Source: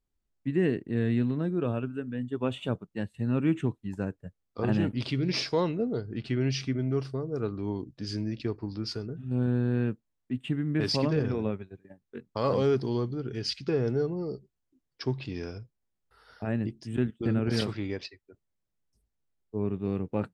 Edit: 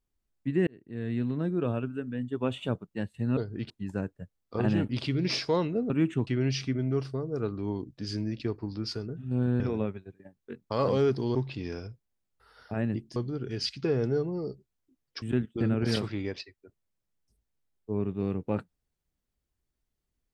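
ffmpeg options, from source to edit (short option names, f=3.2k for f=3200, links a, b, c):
-filter_complex "[0:a]asplit=10[a][b][c][d][e][f][g][h][i][j];[a]atrim=end=0.67,asetpts=PTS-STARTPTS,afade=t=out:st=0.666:d=0.004:c=hsin[k];[b]atrim=start=0.67:end=3.372,asetpts=PTS-STARTPTS,afade=t=in:d=0.79[l];[c]atrim=start=5.938:end=6.272[m];[d]atrim=start=3.738:end=5.942[n];[e]atrim=start=3.368:end=3.742[o];[f]atrim=start=6.268:end=9.602[p];[g]atrim=start=11.248:end=13.002[q];[h]atrim=start=15.058:end=16.872[r];[i]atrim=start=12.998:end=15.062[s];[j]atrim=start=16.868[t];[k][l]concat=n=2:v=0:a=1[u];[u][m]acrossfade=d=0.004:c1=hsin:c2=hsin[v];[v][n]acrossfade=d=0.004:c1=hsin:c2=hsin[w];[w][o]acrossfade=d=0.004:c1=hsin:c2=hsin[x];[x][p]acrossfade=d=0.004:c1=hsin:c2=hsin[y];[y][q]acrossfade=d=0.004:c1=hsin:c2=hsin[z];[z][r]acrossfade=d=0.004:c1=hsin:c2=hsin[aa];[aa][s]acrossfade=d=0.004:c1=hsin:c2=hsin[ab];[ab][t]acrossfade=d=0.004:c1=hsin:c2=hsin"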